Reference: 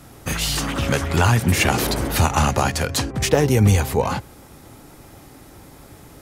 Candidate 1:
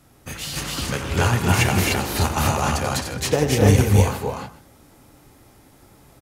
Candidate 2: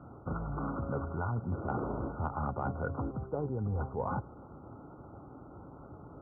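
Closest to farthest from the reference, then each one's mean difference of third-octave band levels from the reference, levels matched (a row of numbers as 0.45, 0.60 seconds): 1, 2; 5.5, 14.5 decibels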